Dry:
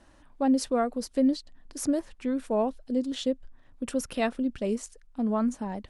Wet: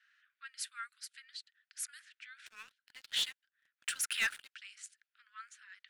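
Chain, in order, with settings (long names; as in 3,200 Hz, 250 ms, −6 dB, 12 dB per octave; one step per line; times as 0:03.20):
dynamic equaliser 5,700 Hz, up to −7 dB, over −55 dBFS, Q 1.9
Butterworth high-pass 1,400 Hz 72 dB per octave
low-pass that shuts in the quiet parts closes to 2,600 Hz, open at −38.5 dBFS
0:02.46–0:04.54: leveller curve on the samples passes 3
level −1.5 dB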